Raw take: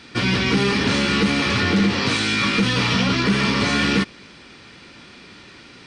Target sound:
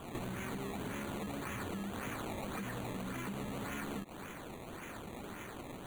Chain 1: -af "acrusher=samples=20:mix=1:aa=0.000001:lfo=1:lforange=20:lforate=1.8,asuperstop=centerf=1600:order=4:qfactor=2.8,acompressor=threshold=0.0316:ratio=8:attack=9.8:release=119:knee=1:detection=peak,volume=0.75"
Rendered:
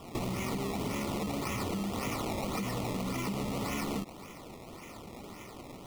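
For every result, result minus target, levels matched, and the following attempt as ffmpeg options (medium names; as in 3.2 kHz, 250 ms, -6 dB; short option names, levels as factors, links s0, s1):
compression: peak gain reduction -6.5 dB; 2 kHz band -4.5 dB
-af "acrusher=samples=20:mix=1:aa=0.000001:lfo=1:lforange=20:lforate=1.8,asuperstop=centerf=1600:order=4:qfactor=2.8,acompressor=threshold=0.0133:ratio=8:attack=9.8:release=119:knee=1:detection=peak,volume=0.75"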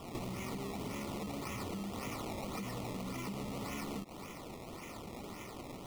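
2 kHz band -3.5 dB
-af "acrusher=samples=20:mix=1:aa=0.000001:lfo=1:lforange=20:lforate=1.8,asuperstop=centerf=5200:order=4:qfactor=2.8,acompressor=threshold=0.0133:ratio=8:attack=9.8:release=119:knee=1:detection=peak,volume=0.75"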